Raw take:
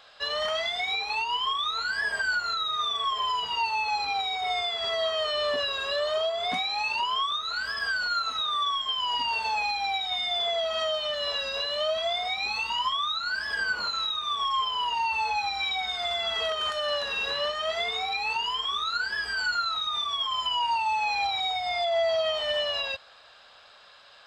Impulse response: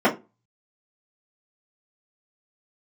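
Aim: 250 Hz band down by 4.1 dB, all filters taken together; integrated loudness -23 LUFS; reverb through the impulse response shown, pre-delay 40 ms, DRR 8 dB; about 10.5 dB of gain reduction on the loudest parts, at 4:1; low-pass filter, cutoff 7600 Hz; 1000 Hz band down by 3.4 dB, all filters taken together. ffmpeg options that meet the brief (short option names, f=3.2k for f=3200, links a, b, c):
-filter_complex "[0:a]lowpass=7.6k,equalizer=f=250:t=o:g=-5,equalizer=f=1k:t=o:g=-4,acompressor=threshold=-39dB:ratio=4,asplit=2[a][b];[1:a]atrim=start_sample=2205,adelay=40[c];[b][c]afir=irnorm=-1:irlink=0,volume=-28dB[d];[a][d]amix=inputs=2:normalize=0,volume=14.5dB"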